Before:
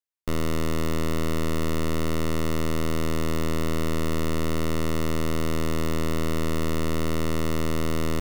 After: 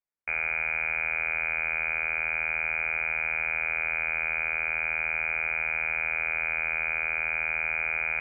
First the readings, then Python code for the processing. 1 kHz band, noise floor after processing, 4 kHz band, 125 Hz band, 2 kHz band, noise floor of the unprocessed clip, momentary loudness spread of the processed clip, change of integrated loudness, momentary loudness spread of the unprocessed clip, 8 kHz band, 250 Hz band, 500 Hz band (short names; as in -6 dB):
-3.5 dB, -31 dBFS, under -15 dB, -23.5 dB, +13.0 dB, -23 dBFS, 0 LU, +1.5 dB, 0 LU, under -40 dB, under -25 dB, -13.5 dB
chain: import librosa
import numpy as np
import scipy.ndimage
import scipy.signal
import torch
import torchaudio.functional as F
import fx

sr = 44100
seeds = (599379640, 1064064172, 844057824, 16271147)

y = scipy.signal.sosfilt(scipy.signal.ellip(4, 1.0, 40, 210.0, 'highpass', fs=sr, output='sos'), x)
y = fx.freq_invert(y, sr, carrier_hz=2700)
y = y * 10.0 ** (1.0 / 20.0)